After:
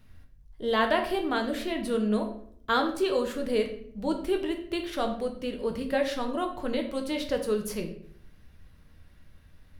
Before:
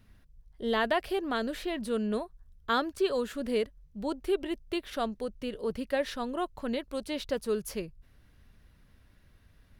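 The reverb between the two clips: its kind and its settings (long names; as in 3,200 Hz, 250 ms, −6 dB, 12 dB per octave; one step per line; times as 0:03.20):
rectangular room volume 100 cubic metres, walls mixed, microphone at 0.57 metres
level +1.5 dB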